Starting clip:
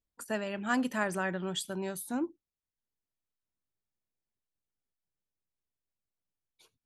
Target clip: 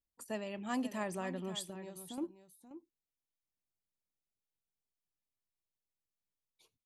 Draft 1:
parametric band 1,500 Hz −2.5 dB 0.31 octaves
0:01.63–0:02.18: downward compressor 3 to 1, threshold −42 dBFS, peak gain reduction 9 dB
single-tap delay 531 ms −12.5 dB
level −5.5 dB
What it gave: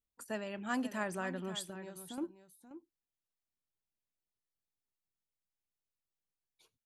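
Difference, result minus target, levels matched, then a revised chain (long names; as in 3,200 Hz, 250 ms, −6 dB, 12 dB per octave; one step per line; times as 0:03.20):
2,000 Hz band +4.0 dB
parametric band 1,500 Hz −14 dB 0.31 octaves
0:01.63–0:02.18: downward compressor 3 to 1, threshold −42 dBFS, peak gain reduction 9 dB
single-tap delay 531 ms −12.5 dB
level −5.5 dB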